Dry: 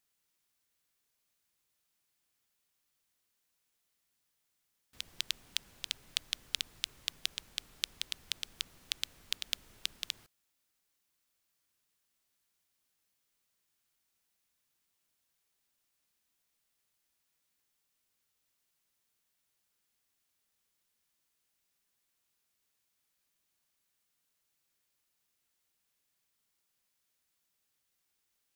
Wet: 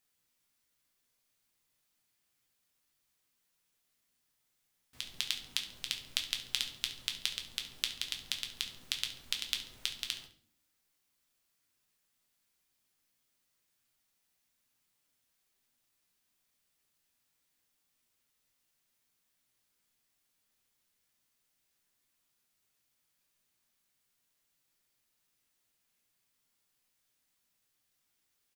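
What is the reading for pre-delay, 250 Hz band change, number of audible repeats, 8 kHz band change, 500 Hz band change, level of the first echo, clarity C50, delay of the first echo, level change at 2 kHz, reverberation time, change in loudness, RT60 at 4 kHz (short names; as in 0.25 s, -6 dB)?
6 ms, +3.5 dB, 2, +1.5 dB, +2.0 dB, -14.0 dB, 10.5 dB, 69 ms, +2.0 dB, 0.50 s, +2.0 dB, 0.45 s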